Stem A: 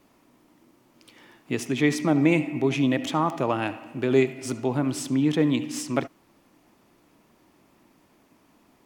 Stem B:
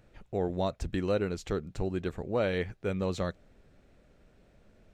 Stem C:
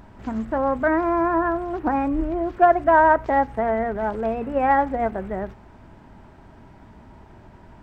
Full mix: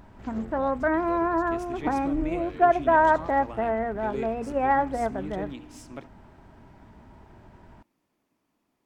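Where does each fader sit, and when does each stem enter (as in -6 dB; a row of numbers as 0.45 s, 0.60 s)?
-15.5 dB, -14.0 dB, -4.0 dB; 0.00 s, 0.00 s, 0.00 s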